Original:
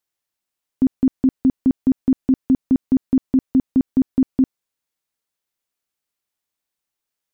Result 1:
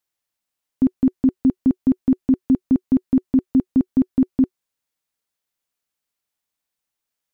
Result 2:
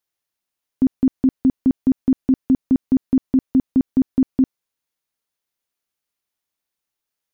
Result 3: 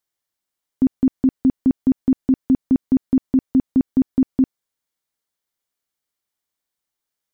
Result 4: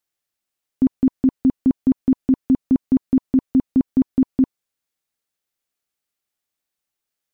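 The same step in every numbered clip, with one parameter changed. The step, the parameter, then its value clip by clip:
notch, frequency: 370, 7800, 2600, 980 Hz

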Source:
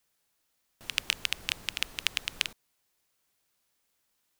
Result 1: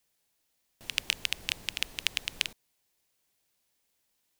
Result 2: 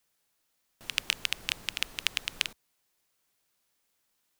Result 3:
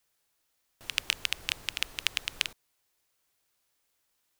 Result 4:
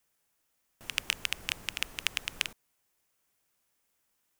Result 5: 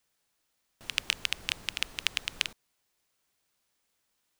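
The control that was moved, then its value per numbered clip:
bell, frequency: 1300, 67, 200, 4100, 15000 Hz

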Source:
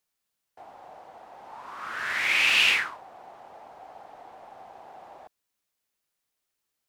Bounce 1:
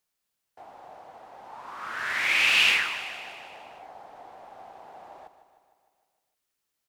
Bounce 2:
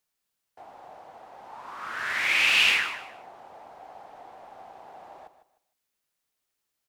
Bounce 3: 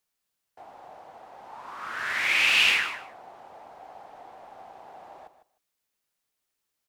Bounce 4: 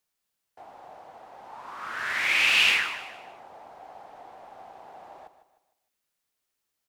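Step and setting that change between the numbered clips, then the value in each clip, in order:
feedback echo, feedback: 61, 25, 15, 38%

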